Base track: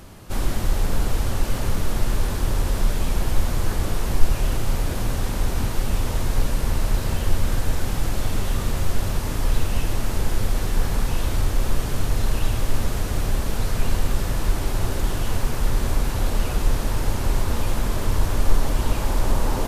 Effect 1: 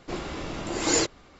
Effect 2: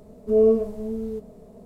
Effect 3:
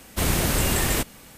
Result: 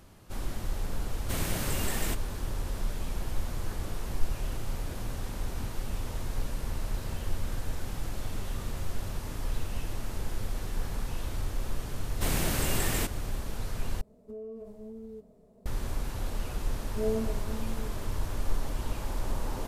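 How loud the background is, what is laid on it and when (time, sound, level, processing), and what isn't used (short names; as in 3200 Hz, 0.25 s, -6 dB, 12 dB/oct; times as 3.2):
base track -11.5 dB
1.12 add 3 -10.5 dB
12.04 add 3 -7.5 dB
14.01 replace with 2 -12.5 dB + compressor 10:1, threshold -26 dBFS
16.68 add 2 -9 dB + notch 450 Hz
not used: 1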